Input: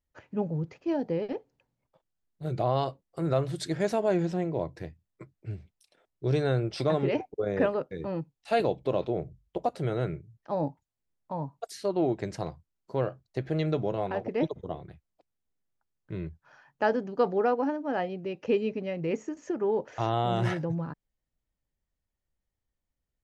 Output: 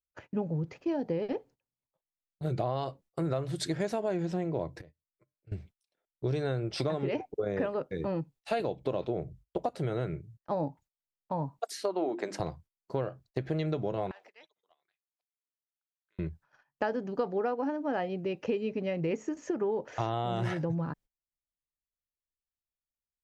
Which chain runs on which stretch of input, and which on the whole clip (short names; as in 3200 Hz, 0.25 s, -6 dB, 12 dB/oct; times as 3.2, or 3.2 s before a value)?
4.81–5.52 bell 540 Hz +8 dB 0.32 oct + compressor 5:1, threshold -46 dBFS + resonator 150 Hz, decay 0.39 s
11.59–12.4 notches 50/100/150/200/250/300/350 Hz + dynamic EQ 1100 Hz, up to +5 dB, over -44 dBFS, Q 0.89 + HPF 230 Hz 24 dB/oct
14.11–16.19 HPF 1400 Hz + high shelf 3700 Hz +6.5 dB + compressor 3:1, threshold -56 dBFS
whole clip: gate -54 dBFS, range -21 dB; compressor, threshold -30 dBFS; gain +2.5 dB